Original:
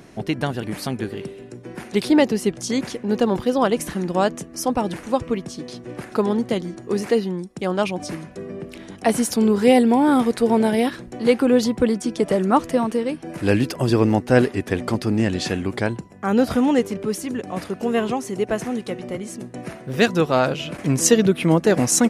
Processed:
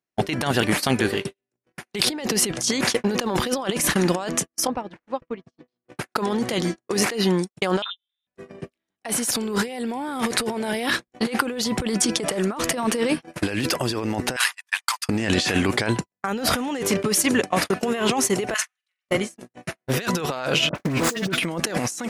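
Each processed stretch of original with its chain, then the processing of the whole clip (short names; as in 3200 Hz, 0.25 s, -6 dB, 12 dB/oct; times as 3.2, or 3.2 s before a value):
4.67–5.89 compressor 5:1, threshold -27 dBFS + tape spacing loss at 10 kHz 25 dB
7.82–8.27 inverted band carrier 3800 Hz + level quantiser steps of 23 dB + HPF 890 Hz 24 dB/oct
14.36–15.09 elliptic high-pass 940 Hz, stop band 80 dB + high shelf 5200 Hz +9.5 dB
18.54–19.09 HPF 1300 Hz 24 dB/oct + high shelf 10000 Hz -8.5 dB + flutter echo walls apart 7.7 m, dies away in 0.33 s
20.69–21.38 median filter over 15 samples + dispersion highs, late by 61 ms, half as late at 1500 Hz
whole clip: gate -29 dBFS, range -55 dB; tilt shelf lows -6 dB, about 630 Hz; negative-ratio compressor -28 dBFS, ratio -1; gain +4 dB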